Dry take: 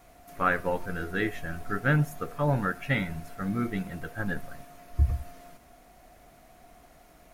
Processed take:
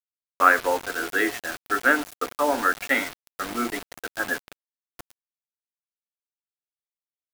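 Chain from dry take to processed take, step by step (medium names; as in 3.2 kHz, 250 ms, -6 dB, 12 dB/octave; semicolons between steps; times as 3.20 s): steep high-pass 240 Hz 72 dB/octave; dynamic bell 1.3 kHz, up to +6 dB, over -42 dBFS, Q 0.85; bit crusher 6-bit; trim +3.5 dB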